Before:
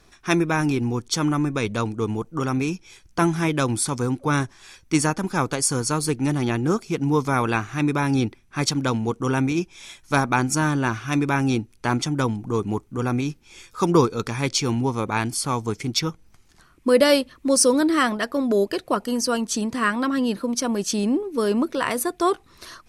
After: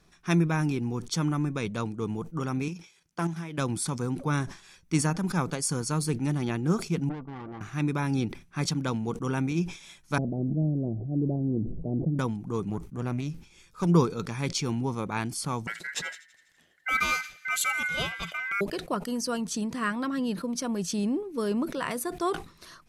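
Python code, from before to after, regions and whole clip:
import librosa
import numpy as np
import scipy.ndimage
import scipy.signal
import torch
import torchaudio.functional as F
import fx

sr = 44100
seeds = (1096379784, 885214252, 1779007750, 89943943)

y = fx.chain(x, sr, fx.highpass(hz=340.0, slope=6),
    fx.level_steps(step_db=11),
    fx.doppler_dist(depth_ms=0.12), at=(2.68, 3.58))
y = fx.chain(y, sr, fx.cheby_ripple(hz=1200.0, ripple_db=9),
    fx.tube_stage(drive_db=29.0, bias=0.75), at=(7.09, 7.61))
y = fx.chain(y, sr, fx.steep_lowpass(hz=670.0, slope=72),
    fx.sustainer(db_per_s=23.0), at=(10.18, 12.19))
y = fx.chain(y, sr, fx.low_shelf(hz=110.0, db=7.5),
    fx.tube_stage(drive_db=14.0, bias=0.7), at=(12.69, 13.87))
y = fx.chain(y, sr, fx.ring_mod(carrier_hz=1800.0),
    fx.echo_wet_highpass(ms=82, feedback_pct=66, hz=2300.0, wet_db=-19), at=(15.67, 18.61))
y = fx.peak_eq(y, sr, hz=170.0, db=11.0, octaves=0.38)
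y = fx.sustainer(y, sr, db_per_s=140.0)
y = F.gain(torch.from_numpy(y), -8.0).numpy()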